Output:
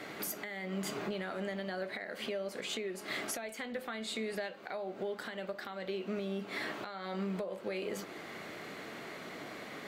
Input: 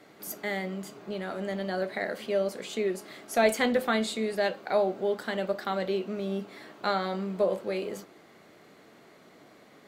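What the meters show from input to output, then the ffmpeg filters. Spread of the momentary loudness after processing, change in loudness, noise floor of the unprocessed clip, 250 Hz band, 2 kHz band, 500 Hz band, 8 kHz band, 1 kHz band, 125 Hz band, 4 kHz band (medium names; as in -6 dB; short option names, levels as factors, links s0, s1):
7 LU, -9.5 dB, -56 dBFS, -7.5 dB, -6.0 dB, -10.5 dB, -2.5 dB, -10.5 dB, no reading, -4.0 dB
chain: -af "equalizer=f=2200:t=o:w=1.7:g=5.5,acompressor=threshold=0.0126:ratio=16,alimiter=level_in=3.55:limit=0.0631:level=0:latency=1:release=424,volume=0.282,volume=2.51"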